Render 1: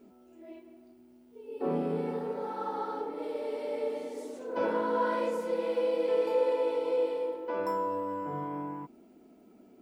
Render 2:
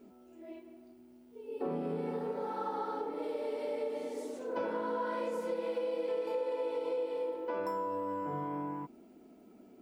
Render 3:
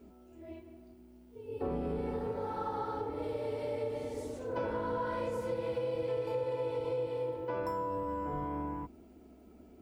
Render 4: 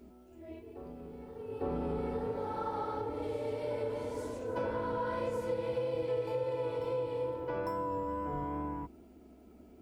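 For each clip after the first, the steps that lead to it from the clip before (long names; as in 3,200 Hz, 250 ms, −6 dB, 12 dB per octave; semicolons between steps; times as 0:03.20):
downward compressor 5 to 1, threshold −32 dBFS, peak gain reduction 9 dB
sub-octave generator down 2 octaves, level −4 dB
tape wow and flutter 16 cents; backwards echo 852 ms −12.5 dB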